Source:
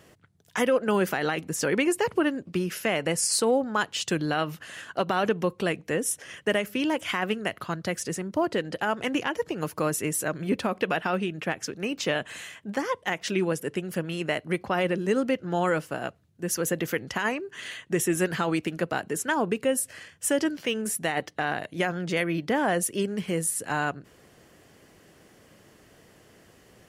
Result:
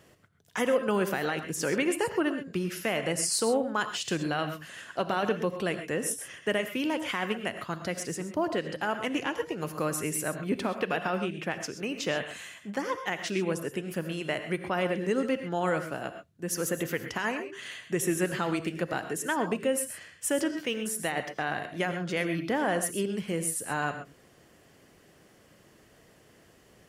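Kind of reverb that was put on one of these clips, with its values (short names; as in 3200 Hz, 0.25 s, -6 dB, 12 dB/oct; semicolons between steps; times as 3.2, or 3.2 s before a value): non-linear reverb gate 0.15 s rising, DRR 8 dB; gain -3.5 dB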